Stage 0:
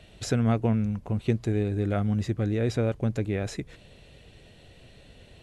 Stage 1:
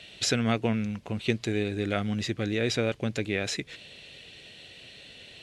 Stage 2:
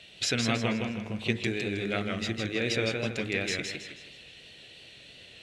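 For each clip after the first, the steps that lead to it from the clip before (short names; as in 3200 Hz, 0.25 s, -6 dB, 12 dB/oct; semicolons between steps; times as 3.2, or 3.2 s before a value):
weighting filter D
dynamic EQ 2500 Hz, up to +5 dB, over -45 dBFS, Q 1; de-hum 51.99 Hz, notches 40; warbling echo 0.16 s, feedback 37%, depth 109 cents, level -4 dB; gain -3.5 dB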